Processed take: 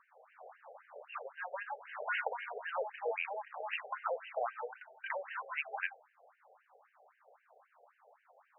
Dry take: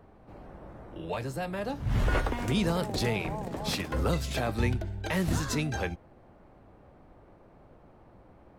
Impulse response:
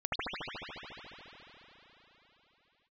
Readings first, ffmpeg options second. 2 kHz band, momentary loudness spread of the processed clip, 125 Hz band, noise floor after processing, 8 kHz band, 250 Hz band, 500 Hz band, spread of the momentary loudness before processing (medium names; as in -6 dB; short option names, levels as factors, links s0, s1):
-3.0 dB, 17 LU, under -40 dB, -74 dBFS, under -40 dB, under -40 dB, -7.5 dB, 15 LU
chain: -af "asubboost=boost=7.5:cutoff=160,afftfilt=real='re*between(b*sr/1024,560*pow(2200/560,0.5+0.5*sin(2*PI*3.8*pts/sr))/1.41,560*pow(2200/560,0.5+0.5*sin(2*PI*3.8*pts/sr))*1.41)':imag='im*between(b*sr/1024,560*pow(2200/560,0.5+0.5*sin(2*PI*3.8*pts/sr))/1.41,560*pow(2200/560,0.5+0.5*sin(2*PI*3.8*pts/sr))*1.41)':win_size=1024:overlap=0.75,volume=1.26"